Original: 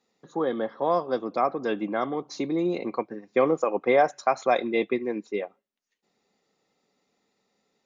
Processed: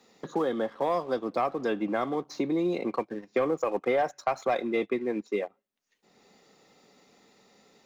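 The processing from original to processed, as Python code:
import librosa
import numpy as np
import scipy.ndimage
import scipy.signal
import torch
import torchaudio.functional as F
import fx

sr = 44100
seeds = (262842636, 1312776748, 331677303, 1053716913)

y = fx.leveller(x, sr, passes=1)
y = fx.band_squash(y, sr, depth_pct=70)
y = y * 10.0 ** (-6.0 / 20.0)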